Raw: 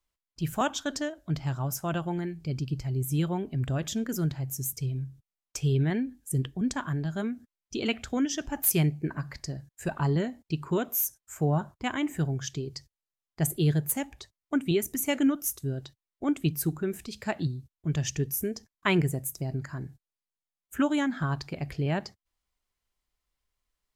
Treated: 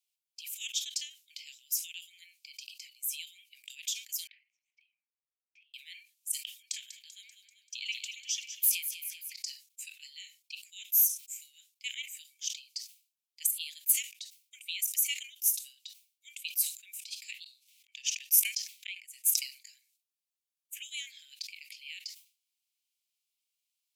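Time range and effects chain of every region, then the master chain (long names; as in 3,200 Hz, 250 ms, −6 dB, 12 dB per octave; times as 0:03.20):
0:04.27–0:05.74: low-pass filter 1,700 Hz 24 dB per octave + downward compressor, threshold −41 dBFS
0:06.62–0:09.34: echo with a time of its own for lows and highs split 2,300 Hz, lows 273 ms, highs 194 ms, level −11 dB + downward compressor 2 to 1, threshold −28 dBFS
0:17.44–0:19.42: spectral tilt −3.5 dB per octave + gate with flip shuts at −17 dBFS, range −28 dB + envelope flattener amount 100%
whole clip: Butterworth high-pass 2,300 Hz 72 dB per octave; parametric band 14,000 Hz +3 dB 1.1 octaves; level that may fall only so fast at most 150 dB per second; level +1.5 dB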